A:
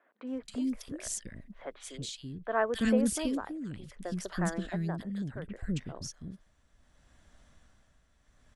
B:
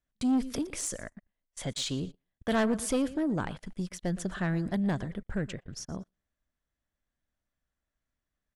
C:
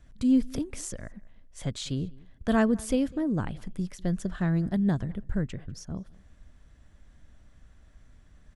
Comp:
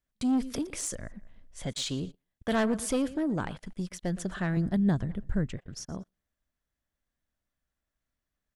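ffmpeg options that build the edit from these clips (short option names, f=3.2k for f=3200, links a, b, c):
-filter_complex "[2:a]asplit=2[a][b];[1:a]asplit=3[c][d][e];[c]atrim=end=0.952[f];[a]atrim=start=0.948:end=1.662[g];[d]atrim=start=1.658:end=4.572[h];[b]atrim=start=4.568:end=5.572[i];[e]atrim=start=5.568[j];[f][g]acrossfade=d=0.004:c1=hsin:c2=hsin[k];[k][h]acrossfade=d=0.004:c1=hsin:c2=hsin[l];[l][i]acrossfade=d=0.004:c1=hsin:c2=hsin[m];[m][j]acrossfade=d=0.004:c1=hsin:c2=hsin"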